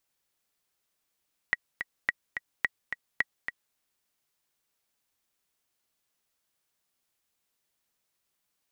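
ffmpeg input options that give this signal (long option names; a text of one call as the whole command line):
ffmpeg -f lavfi -i "aevalsrc='pow(10,(-11-8*gte(mod(t,2*60/215),60/215))/20)*sin(2*PI*1920*mod(t,60/215))*exp(-6.91*mod(t,60/215)/0.03)':duration=2.23:sample_rate=44100" out.wav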